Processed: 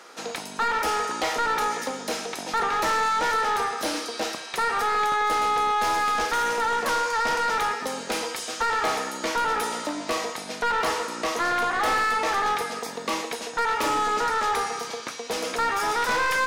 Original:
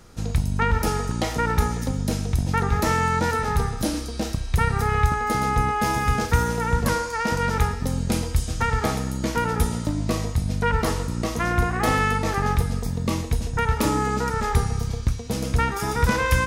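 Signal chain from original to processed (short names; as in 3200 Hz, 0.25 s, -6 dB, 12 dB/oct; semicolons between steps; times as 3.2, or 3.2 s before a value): Bessel high-pass 400 Hz, order 4; overdrive pedal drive 25 dB, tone 3000 Hz, clips at -6.5 dBFS; gain -8 dB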